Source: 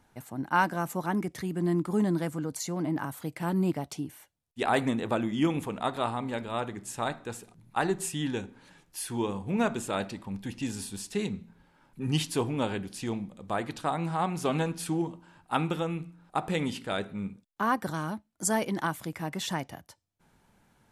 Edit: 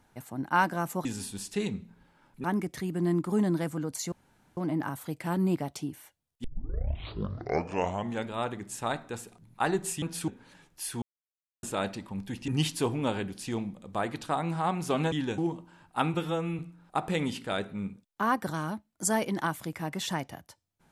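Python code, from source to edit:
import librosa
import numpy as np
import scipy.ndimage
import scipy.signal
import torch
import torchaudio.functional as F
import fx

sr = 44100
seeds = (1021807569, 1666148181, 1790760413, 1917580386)

y = fx.edit(x, sr, fx.insert_room_tone(at_s=2.73, length_s=0.45),
    fx.tape_start(start_s=4.6, length_s=1.85),
    fx.swap(start_s=8.18, length_s=0.26, other_s=14.67, other_length_s=0.26),
    fx.silence(start_s=9.18, length_s=0.61),
    fx.move(start_s=10.64, length_s=1.39, to_s=1.05),
    fx.stretch_span(start_s=15.69, length_s=0.3, factor=1.5), tone=tone)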